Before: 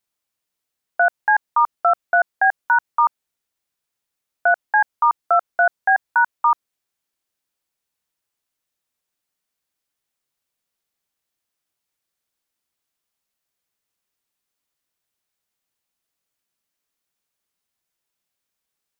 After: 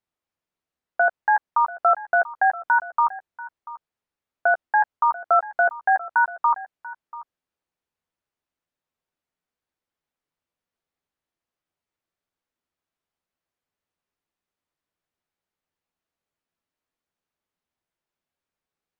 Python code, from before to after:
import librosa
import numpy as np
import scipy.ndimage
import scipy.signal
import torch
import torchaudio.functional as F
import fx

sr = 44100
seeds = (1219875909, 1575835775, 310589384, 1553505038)

y = fx.lowpass(x, sr, hz=1400.0, slope=6)
y = fx.doubler(y, sr, ms=12.0, db=-9.5)
y = y + 10.0 ** (-17.5 / 20.0) * np.pad(y, (int(688 * sr / 1000.0), 0))[:len(y)]